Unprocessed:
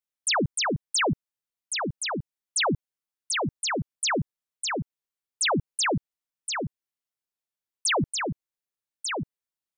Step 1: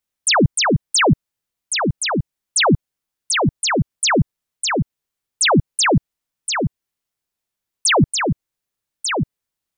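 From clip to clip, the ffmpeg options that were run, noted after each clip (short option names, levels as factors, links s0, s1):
-af "lowshelf=f=200:g=7,volume=2.66"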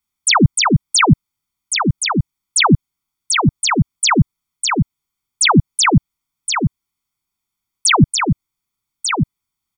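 -af "aecho=1:1:0.9:0.9"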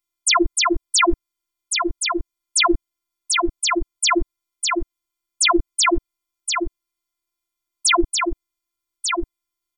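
-af "afftfilt=real='hypot(re,im)*cos(PI*b)':imag='0':win_size=512:overlap=0.75"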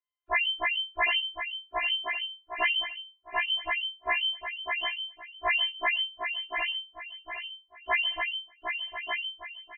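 -af "aecho=1:1:757|1514|2271|3028:0.473|0.156|0.0515|0.017,lowpass=f=2600:t=q:w=0.5098,lowpass=f=2600:t=q:w=0.6013,lowpass=f=2600:t=q:w=0.9,lowpass=f=2600:t=q:w=2.563,afreqshift=-3100,afftfilt=real='re*1.73*eq(mod(b,3),0)':imag='im*1.73*eq(mod(b,3),0)':win_size=2048:overlap=0.75,volume=0.501"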